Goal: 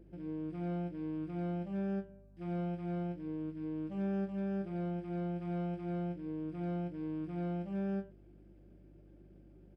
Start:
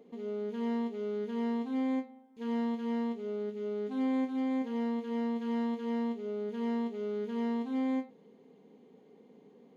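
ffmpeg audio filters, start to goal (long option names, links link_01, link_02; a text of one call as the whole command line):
ffmpeg -i in.wav -af "equalizer=frequency=660:width_type=o:width=0.79:gain=7,asetrate=33038,aresample=44100,atempo=1.33484,aeval=exprs='val(0)+0.00224*(sin(2*PI*50*n/s)+sin(2*PI*2*50*n/s)/2+sin(2*PI*3*50*n/s)/3+sin(2*PI*4*50*n/s)/4+sin(2*PI*5*50*n/s)/5)':channel_layout=same,volume=-5.5dB" out.wav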